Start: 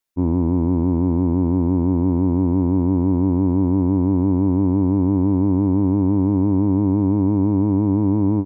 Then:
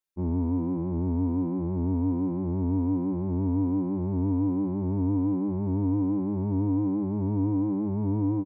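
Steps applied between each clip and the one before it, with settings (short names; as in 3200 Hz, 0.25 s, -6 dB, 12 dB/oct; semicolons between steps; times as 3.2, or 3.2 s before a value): endless flanger 3.4 ms +1.3 Hz; gain -6 dB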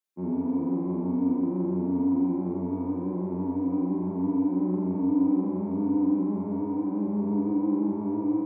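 HPF 160 Hz 24 dB/oct; on a send: flutter echo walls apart 7.5 m, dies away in 0.87 s; on the sum: gain -1.5 dB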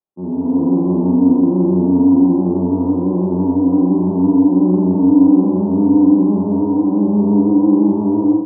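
LPF 1000 Hz 24 dB/oct; AGC gain up to 8 dB; gain +5.5 dB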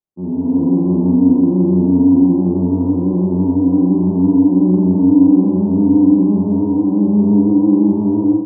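low shelf 310 Hz +11.5 dB; gain -6 dB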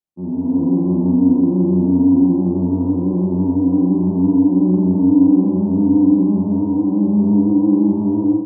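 notch 420 Hz, Q 12; gain -2 dB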